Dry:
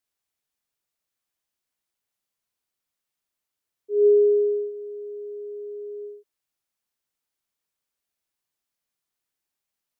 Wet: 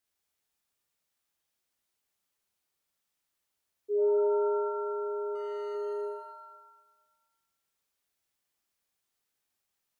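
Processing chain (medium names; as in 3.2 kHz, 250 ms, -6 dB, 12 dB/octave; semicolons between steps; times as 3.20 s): compression 2.5:1, threshold -31 dBFS, peak gain reduction 11 dB; 5.35–5.75 s: overload inside the chain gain 35.5 dB; pitch-shifted reverb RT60 1 s, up +7 st, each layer -2 dB, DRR 3.5 dB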